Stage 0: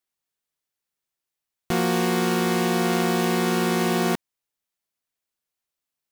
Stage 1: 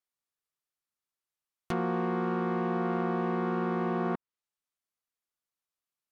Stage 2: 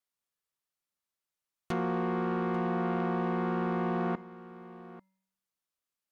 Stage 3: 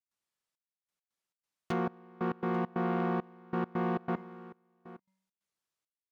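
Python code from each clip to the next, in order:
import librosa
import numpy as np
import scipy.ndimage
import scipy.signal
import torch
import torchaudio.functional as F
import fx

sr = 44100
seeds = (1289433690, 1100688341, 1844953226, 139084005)

y1 = fx.env_lowpass_down(x, sr, base_hz=1300.0, full_db=-21.0)
y1 = fx.peak_eq(y1, sr, hz=1200.0, db=5.5, octaves=0.48)
y1 = y1 * librosa.db_to_amplitude(-7.5)
y2 = fx.comb_fb(y1, sr, f0_hz=190.0, decay_s=0.75, harmonics='odd', damping=0.0, mix_pct=60)
y2 = 10.0 ** (-29.5 / 20.0) * np.tanh(y2 / 10.0 ** (-29.5 / 20.0))
y2 = y2 + 10.0 ** (-17.0 / 20.0) * np.pad(y2, (int(842 * sr / 1000.0), 0))[:len(y2)]
y2 = y2 * librosa.db_to_amplitude(8.0)
y3 = scipy.signal.sosfilt(scipy.signal.butter(2, 78.0, 'highpass', fs=sr, output='sos'), y2)
y3 = fx.step_gate(y3, sr, bpm=136, pattern='.xxxx...x.xx', floor_db=-24.0, edge_ms=4.5)
y3 = np.interp(np.arange(len(y3)), np.arange(len(y3))[::2], y3[::2])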